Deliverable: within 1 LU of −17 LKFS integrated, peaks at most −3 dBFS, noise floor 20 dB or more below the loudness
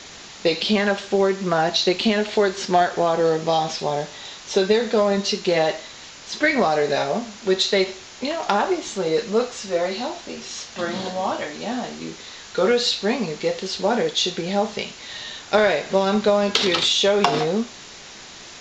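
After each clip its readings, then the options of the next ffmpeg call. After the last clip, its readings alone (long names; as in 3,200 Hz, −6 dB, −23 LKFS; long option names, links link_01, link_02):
background noise floor −41 dBFS; target noise floor −42 dBFS; integrated loudness −21.5 LKFS; sample peak −3.5 dBFS; target loudness −17.0 LKFS
→ -af "afftdn=noise_reduction=6:noise_floor=-41"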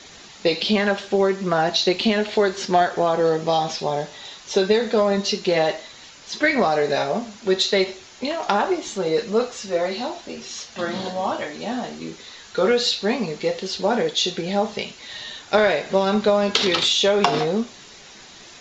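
background noise floor −44 dBFS; integrated loudness −21.5 LKFS; sample peak −3.5 dBFS; target loudness −17.0 LKFS
→ -af "volume=4.5dB,alimiter=limit=-3dB:level=0:latency=1"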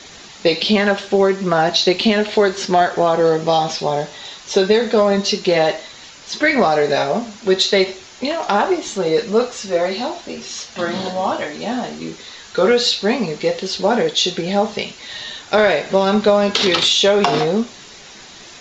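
integrated loudness −17.0 LKFS; sample peak −3.0 dBFS; background noise floor −40 dBFS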